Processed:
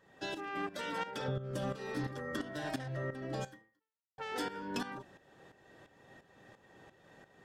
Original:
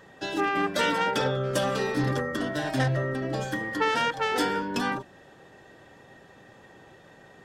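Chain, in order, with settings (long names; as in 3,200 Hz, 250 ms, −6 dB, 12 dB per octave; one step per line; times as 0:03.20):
0:01.28–0:01.76: low-shelf EQ 380 Hz +12 dB
0:03.44–0:04.18: fade out exponential
downward compressor 6 to 1, threshold −27 dBFS, peak gain reduction 10.5 dB
shaped tremolo saw up 2.9 Hz, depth 75%
level −4.5 dB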